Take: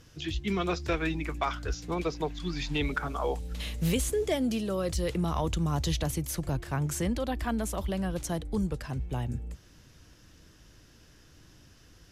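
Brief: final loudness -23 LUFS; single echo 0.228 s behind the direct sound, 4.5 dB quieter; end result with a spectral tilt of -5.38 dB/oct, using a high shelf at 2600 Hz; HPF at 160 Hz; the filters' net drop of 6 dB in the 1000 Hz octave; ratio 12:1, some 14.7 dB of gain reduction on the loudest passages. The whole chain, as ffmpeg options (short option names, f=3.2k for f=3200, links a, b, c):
-af "highpass=160,equalizer=f=1k:t=o:g=-7,highshelf=f=2.6k:g=-8,acompressor=threshold=-42dB:ratio=12,aecho=1:1:228:0.596,volume=22.5dB"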